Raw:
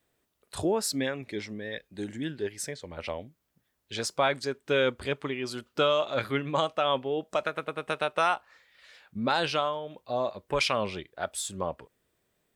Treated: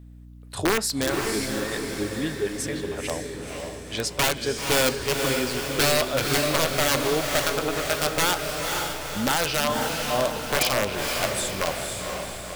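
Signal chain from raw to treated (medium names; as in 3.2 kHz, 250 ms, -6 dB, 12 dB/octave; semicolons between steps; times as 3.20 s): integer overflow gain 19 dB; echo that smears into a reverb 506 ms, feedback 55%, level -3.5 dB; on a send at -15.5 dB: reverberation RT60 0.35 s, pre-delay 3 ms; on the sum: hum 60 Hz, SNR 19 dB; trim +4 dB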